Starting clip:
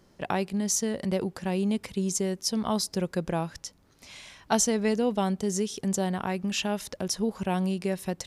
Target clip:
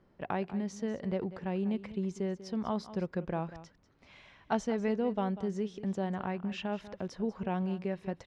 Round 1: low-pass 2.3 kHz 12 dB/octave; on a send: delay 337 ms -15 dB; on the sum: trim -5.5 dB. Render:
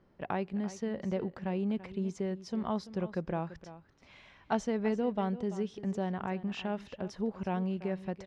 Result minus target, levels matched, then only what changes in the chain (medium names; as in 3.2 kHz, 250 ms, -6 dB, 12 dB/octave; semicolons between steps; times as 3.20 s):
echo 144 ms late
change: delay 193 ms -15 dB